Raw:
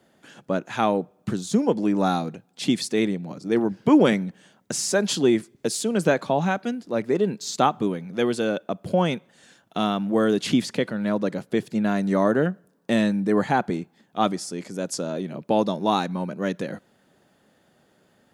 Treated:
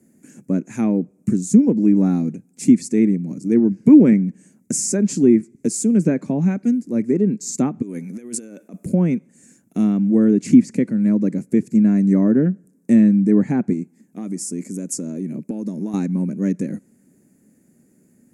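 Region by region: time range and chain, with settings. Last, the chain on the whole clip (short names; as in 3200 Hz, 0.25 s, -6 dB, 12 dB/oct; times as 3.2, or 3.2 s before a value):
7.82–8.86 HPF 610 Hz 6 dB/oct + negative-ratio compressor -37 dBFS
13.73–15.94 compressor, threshold -26 dBFS + bell 63 Hz -7 dB 1.7 oct
whole clip: treble ducked by the level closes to 2700 Hz, closed at -15.5 dBFS; EQ curve 110 Hz 0 dB, 250 Hz +9 dB, 750 Hz -15 dB, 1300 Hz -16 dB, 2300 Hz -5 dB, 3300 Hz -25 dB, 7200 Hz +7 dB; gain +2.5 dB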